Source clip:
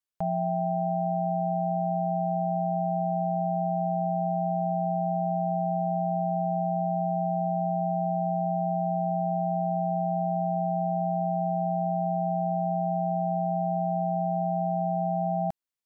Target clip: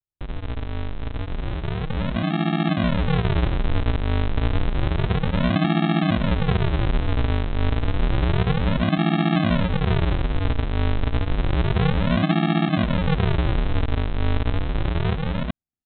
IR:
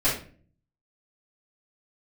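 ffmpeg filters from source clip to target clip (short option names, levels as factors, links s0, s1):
-af "dynaudnorm=f=870:g=5:m=2.37,aresample=8000,acrusher=samples=31:mix=1:aa=0.000001:lfo=1:lforange=31:lforate=0.3,aresample=44100"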